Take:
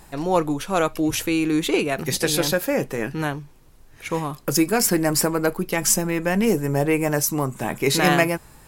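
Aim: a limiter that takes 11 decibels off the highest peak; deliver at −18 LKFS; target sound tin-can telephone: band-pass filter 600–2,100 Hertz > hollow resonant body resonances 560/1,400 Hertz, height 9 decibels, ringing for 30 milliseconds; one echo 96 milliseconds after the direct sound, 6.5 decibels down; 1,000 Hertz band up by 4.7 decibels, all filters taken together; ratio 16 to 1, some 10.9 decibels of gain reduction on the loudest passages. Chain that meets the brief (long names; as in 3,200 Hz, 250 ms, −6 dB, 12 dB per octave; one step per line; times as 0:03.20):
parametric band 1,000 Hz +8 dB
downward compressor 16 to 1, threshold −20 dBFS
brickwall limiter −19 dBFS
band-pass filter 600–2,100 Hz
single-tap delay 96 ms −6.5 dB
hollow resonant body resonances 560/1,400 Hz, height 9 dB, ringing for 30 ms
level +13.5 dB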